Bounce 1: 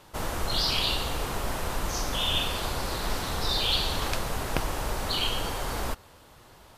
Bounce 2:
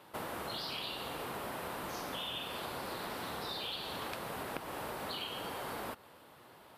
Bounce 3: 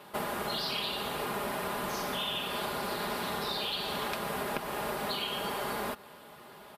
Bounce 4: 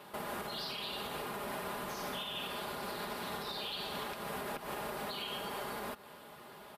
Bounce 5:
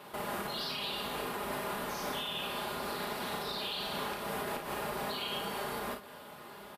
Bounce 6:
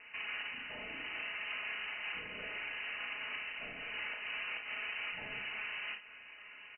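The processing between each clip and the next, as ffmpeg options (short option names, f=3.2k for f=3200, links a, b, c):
-af "highpass=170,equalizer=f=6.4k:w=1.3:g=-11,acompressor=threshold=-35dB:ratio=6,volume=-2.5dB"
-af "aecho=1:1:4.9:0.55,volume=5.5dB"
-af "alimiter=level_in=5dB:limit=-24dB:level=0:latency=1:release=194,volume=-5dB,volume=-1.5dB"
-af "aecho=1:1:35|55:0.562|0.422,volume=1.5dB"
-af "lowpass=f=2.6k:t=q:w=0.5098,lowpass=f=2.6k:t=q:w=0.6013,lowpass=f=2.6k:t=q:w=0.9,lowpass=f=2.6k:t=q:w=2.563,afreqshift=-3100,volume=-3.5dB"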